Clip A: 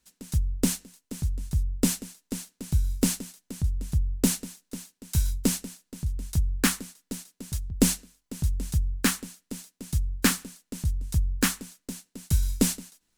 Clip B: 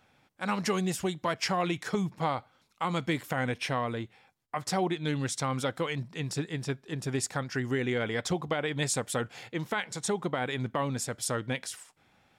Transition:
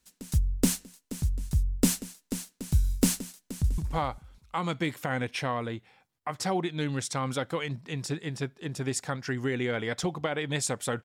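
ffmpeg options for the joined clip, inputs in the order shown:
ffmpeg -i cue0.wav -i cue1.wav -filter_complex "[0:a]apad=whole_dur=11.04,atrim=end=11.04,atrim=end=3.782[link_01];[1:a]atrim=start=2.048:end=9.31[link_02];[link_01][link_02]acrossfade=duration=0.004:curve1=hsin:curve2=hsin,asplit=2[link_03][link_04];[link_04]afade=type=in:start_time=3.4:duration=0.01,afade=type=out:start_time=3.78:duration=0.01,aecho=0:1:200|400|600|800:0.421697|0.147594|0.0516578|0.0180802[link_05];[link_03][link_05]amix=inputs=2:normalize=0" out.wav

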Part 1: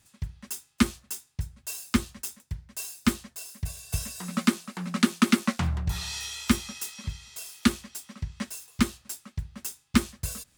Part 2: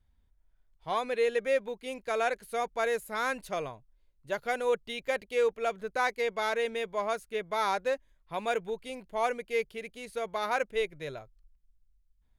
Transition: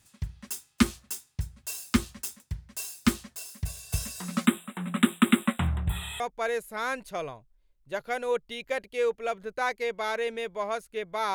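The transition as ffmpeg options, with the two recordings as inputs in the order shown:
ffmpeg -i cue0.wav -i cue1.wav -filter_complex "[0:a]asplit=3[link_01][link_02][link_03];[link_01]afade=type=out:start_time=4.45:duration=0.02[link_04];[link_02]asuperstop=centerf=5400:order=20:qfactor=1.5,afade=type=in:start_time=4.45:duration=0.02,afade=type=out:start_time=6.2:duration=0.02[link_05];[link_03]afade=type=in:start_time=6.2:duration=0.02[link_06];[link_04][link_05][link_06]amix=inputs=3:normalize=0,apad=whole_dur=11.34,atrim=end=11.34,atrim=end=6.202[link_07];[1:a]atrim=start=2.578:end=7.72[link_08];[link_07][link_08]acrossfade=duration=0.004:curve1=hsin:curve2=hsin" out.wav

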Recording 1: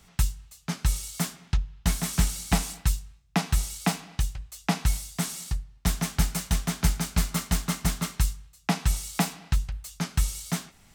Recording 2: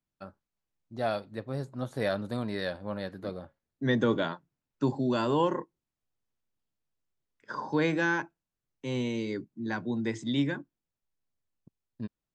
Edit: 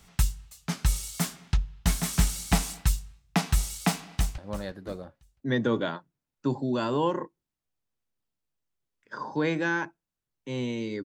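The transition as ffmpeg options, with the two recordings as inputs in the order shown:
ffmpeg -i cue0.wav -i cue1.wav -filter_complex "[0:a]apad=whole_dur=11.04,atrim=end=11.04,atrim=end=4.382[link_01];[1:a]atrim=start=2.748:end=9.41[link_02];[link_01][link_02]acrossfade=duration=0.004:curve1=hsin:curve2=hsin,asplit=2[link_03][link_04];[link_04]afade=type=in:start_time=3.84:duration=0.01,afade=type=out:start_time=4.38:duration=0.01,aecho=0:1:340|680|1020:0.199526|0.0598579|0.0179574[link_05];[link_03][link_05]amix=inputs=2:normalize=0" out.wav

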